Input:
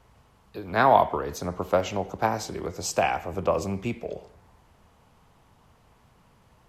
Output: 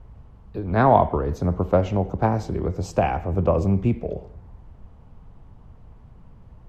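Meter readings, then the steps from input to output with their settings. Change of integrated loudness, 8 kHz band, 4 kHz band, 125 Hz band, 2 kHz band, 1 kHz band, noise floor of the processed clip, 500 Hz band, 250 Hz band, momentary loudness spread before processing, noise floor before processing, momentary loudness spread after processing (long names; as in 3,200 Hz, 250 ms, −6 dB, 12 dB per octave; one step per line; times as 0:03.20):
+3.5 dB, −11.0 dB, −7.5 dB, +12.5 dB, −3.0 dB, +1.0 dB, −48 dBFS, +3.5 dB, +8.5 dB, 17 LU, −60 dBFS, 12 LU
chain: spectral tilt −4 dB per octave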